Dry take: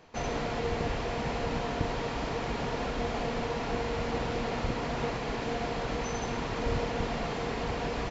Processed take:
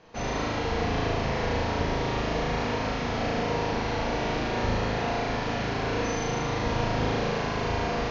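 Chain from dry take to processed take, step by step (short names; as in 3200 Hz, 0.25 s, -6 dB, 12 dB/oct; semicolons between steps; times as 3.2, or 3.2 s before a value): steep low-pass 6700 Hz 96 dB/oct; flutter echo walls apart 6.4 m, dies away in 1.4 s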